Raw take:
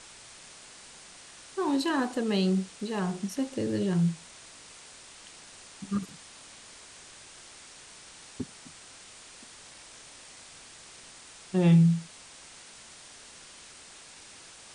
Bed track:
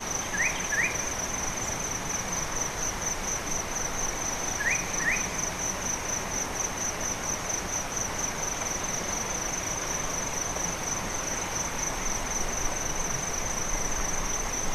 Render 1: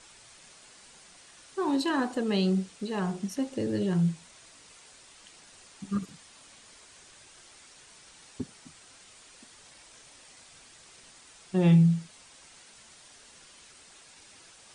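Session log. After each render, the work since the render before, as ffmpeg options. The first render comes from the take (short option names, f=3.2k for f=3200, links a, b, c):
-af "afftdn=nr=6:nf=-50"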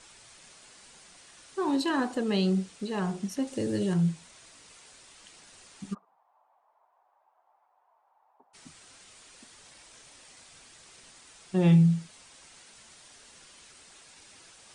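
-filter_complex "[0:a]asettb=1/sr,asplit=3[a][b][c];[a]atrim=end=3.474[d];[b]atrim=start=3.47:end=3.94,asetpts=PTS-STARTPTS,afade=t=in:d=0.004:c=qsin,afade=t=out:st=0.466:d=0.004:c=qsin,highshelf=f=7.9k:g=11.5[e];[c]atrim=start=3.936[f];[d][e]acrossfade=d=0.004:c1=hsin:c2=qsin[g];[g][f]acrossfade=d=0.004:c1=qsin:c2=hsin,asplit=3[h][i][j];[h]afade=t=out:st=5.93:d=0.02[k];[i]asuperpass=centerf=830:order=4:qfactor=2.5,afade=t=in:st=5.93:d=0.02,afade=t=out:st=8.53:d=0.02[l];[j]afade=t=in:st=8.53:d=0.02[m];[k][l][m]amix=inputs=3:normalize=0"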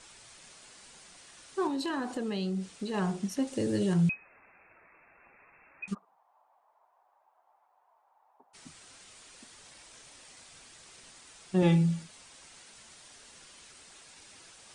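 -filter_complex "[0:a]asettb=1/sr,asplit=3[a][b][c];[a]atrim=end=1.674[d];[b]atrim=start=1.67:end=2.94,asetpts=PTS-STARTPTS,afade=t=in:d=0.004:c=qsin,afade=t=out:st=1.266:d=0.004:c=qsin,acompressor=threshold=-30dB:ratio=4:attack=3.2:release=140:knee=1:detection=peak[e];[c]atrim=start=2.936[f];[d][e]acrossfade=d=0.004:c1=hsin:c2=qsin[g];[g][f]acrossfade=d=0.004:c1=qsin:c2=hsin,asettb=1/sr,asplit=3[h][i][j];[h]atrim=end=4.094[k];[i]atrim=start=4.09:end=5.88,asetpts=PTS-STARTPTS,afade=t=in:d=0.004:c=qsin,afade=t=out:st=1.786:d=0.004:c=qsin,lowpass=f=2.3k:t=q:w=0.5098,lowpass=f=2.3k:t=q:w=0.6013,lowpass=f=2.3k:t=q:w=0.9,lowpass=f=2.3k:t=q:w=2.563,afreqshift=-2700[l];[j]atrim=start=5.876[m];[k][l]acrossfade=d=0.004:c1=hsin:c2=qsin[n];[n][m]acrossfade=d=0.004:c1=qsin:c2=hsin,asettb=1/sr,asplit=3[o][p][q];[o]atrim=end=11.624[r];[p]atrim=start=11.62:end=12.03,asetpts=PTS-STARTPTS,afade=t=in:d=0.004:c=qsin,afade=t=out:st=0.406:d=0.004:c=qsin,aecho=1:1:3.5:0.65,atrim=end_sample=18081[s];[q]atrim=start=12.026[t];[r][s]acrossfade=d=0.004:c1=hsin:c2=qsin[u];[u][t]acrossfade=d=0.004:c1=qsin:c2=hsin"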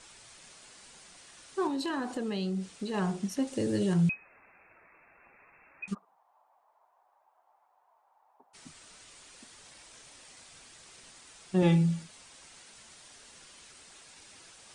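-filter_complex "[0:a]asettb=1/sr,asplit=3[a][b][c];[a]atrim=end=8.724[d];[b]atrim=start=8.72:end=9.26,asetpts=PTS-STARTPTS,afade=t=in:d=0.004:c=qsin,afade=t=out:st=0.536:d=0.004:c=qsin,afreqshift=-82[e];[c]atrim=start=9.256[f];[d][e]acrossfade=d=0.004:c1=hsin:c2=qsin[g];[g][f]acrossfade=d=0.004:c1=qsin:c2=hsin"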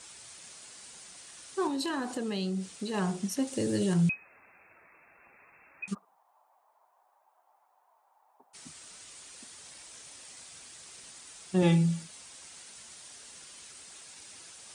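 -af "highpass=50,highshelf=f=5.7k:g=9"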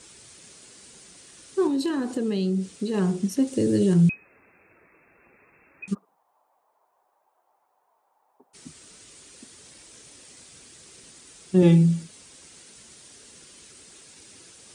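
-af "lowshelf=f=550:t=q:w=1.5:g=7"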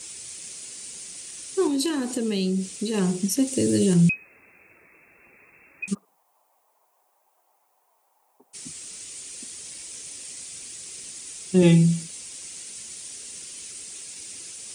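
-af "aexciter=amount=2:drive=6.7:freq=2.1k"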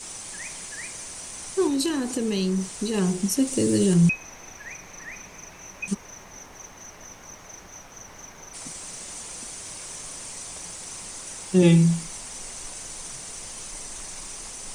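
-filter_complex "[1:a]volume=-13dB[a];[0:a][a]amix=inputs=2:normalize=0"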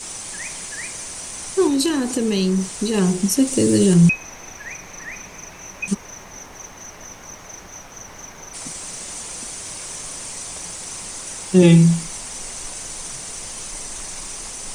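-af "volume=5.5dB,alimiter=limit=-2dB:level=0:latency=1"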